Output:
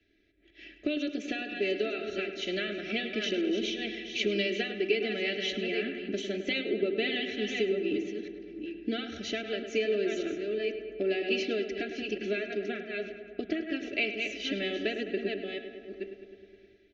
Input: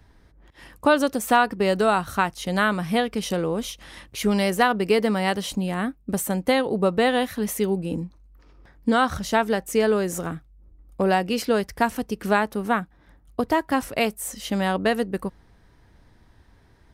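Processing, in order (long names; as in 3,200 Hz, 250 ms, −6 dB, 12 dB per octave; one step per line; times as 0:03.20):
delay that plays each chunk backwards 487 ms, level −9 dB
Butterworth low-pass 6,700 Hz 96 dB per octave
three-way crossover with the lows and the highs turned down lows −23 dB, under 190 Hz, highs −22 dB, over 5,200 Hz
comb filter 3 ms, depth 93%
downward compressor 4 to 1, threshold −22 dBFS, peak gain reduction 11 dB
thirty-one-band graphic EQ 250 Hz −9 dB, 2,500 Hz +7 dB, 5,000 Hz −8 dB
feedback echo with a low-pass in the loop 104 ms, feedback 77%, low-pass 3,400 Hz, level −10 dB
automatic gain control gain up to 6.5 dB
Butterworth band-reject 980 Hz, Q 0.56
hum removal 129.9 Hz, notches 30
level −6.5 dB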